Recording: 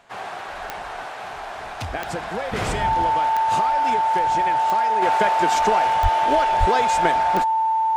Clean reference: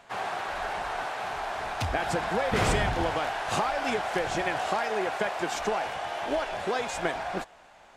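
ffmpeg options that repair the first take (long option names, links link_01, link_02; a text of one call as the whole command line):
ffmpeg -i in.wav -filter_complex "[0:a]adeclick=threshold=4,bandreject=frequency=890:width=30,asplit=3[link_01][link_02][link_03];[link_01]afade=type=out:start_time=6.02:duration=0.02[link_04];[link_02]highpass=frequency=140:width=0.5412,highpass=frequency=140:width=1.3066,afade=type=in:start_time=6.02:duration=0.02,afade=type=out:start_time=6.14:duration=0.02[link_05];[link_03]afade=type=in:start_time=6.14:duration=0.02[link_06];[link_04][link_05][link_06]amix=inputs=3:normalize=0,asplit=3[link_07][link_08][link_09];[link_07]afade=type=out:start_time=6.59:duration=0.02[link_10];[link_08]highpass=frequency=140:width=0.5412,highpass=frequency=140:width=1.3066,afade=type=in:start_time=6.59:duration=0.02,afade=type=out:start_time=6.71:duration=0.02[link_11];[link_09]afade=type=in:start_time=6.71:duration=0.02[link_12];[link_10][link_11][link_12]amix=inputs=3:normalize=0,asetnsamples=nb_out_samples=441:pad=0,asendcmd='5.02 volume volume -7dB',volume=0dB" out.wav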